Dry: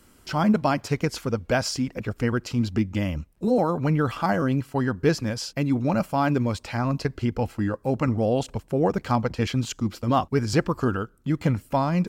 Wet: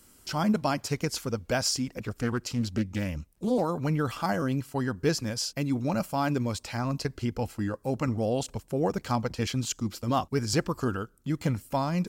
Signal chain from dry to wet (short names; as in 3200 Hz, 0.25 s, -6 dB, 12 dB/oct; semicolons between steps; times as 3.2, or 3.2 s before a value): tone controls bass 0 dB, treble +9 dB; 2–3.65 Doppler distortion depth 0.28 ms; gain -5 dB